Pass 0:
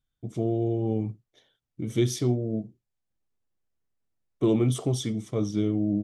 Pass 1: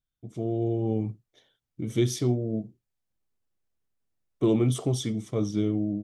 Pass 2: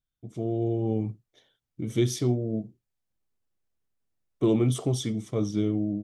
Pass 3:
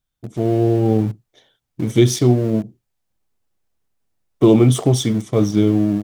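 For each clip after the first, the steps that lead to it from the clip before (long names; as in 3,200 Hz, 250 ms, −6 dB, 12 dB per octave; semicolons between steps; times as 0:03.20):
automatic gain control gain up to 6.5 dB; level −6.5 dB
no processing that can be heard
parametric band 810 Hz +3 dB 0.74 octaves; in parallel at −8 dB: centre clipping without the shift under −34 dBFS; on the sum: level +8 dB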